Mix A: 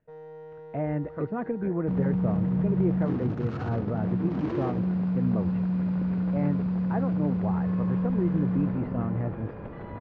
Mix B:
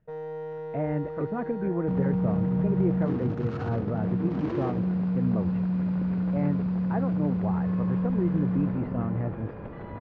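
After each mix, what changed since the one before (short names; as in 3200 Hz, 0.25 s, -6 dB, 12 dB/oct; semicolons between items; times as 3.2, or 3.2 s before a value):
first sound +8.0 dB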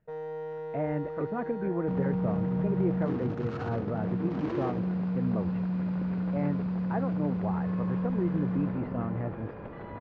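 master: add low shelf 250 Hz -5.5 dB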